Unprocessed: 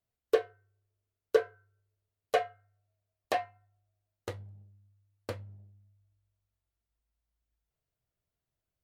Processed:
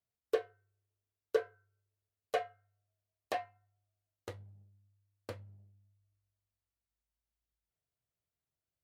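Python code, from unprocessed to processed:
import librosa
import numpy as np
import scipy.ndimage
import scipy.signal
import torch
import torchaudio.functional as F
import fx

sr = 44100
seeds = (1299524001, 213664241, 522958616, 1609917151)

y = scipy.signal.sosfilt(scipy.signal.butter(2, 54.0, 'highpass', fs=sr, output='sos'), x)
y = F.gain(torch.from_numpy(y), -6.0).numpy()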